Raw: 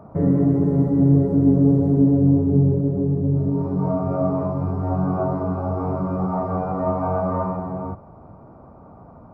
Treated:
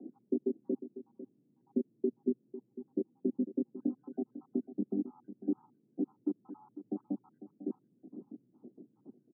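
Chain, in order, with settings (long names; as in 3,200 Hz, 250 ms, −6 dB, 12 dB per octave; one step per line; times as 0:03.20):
time-frequency cells dropped at random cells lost 82%
downward compressor 6 to 1, threshold −27 dBFS, peak gain reduction 14 dB
background noise brown −60 dBFS
frequency shifter +110 Hz
flat-topped band-pass 290 Hz, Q 1.7
single-tap delay 499 ms −13.5 dB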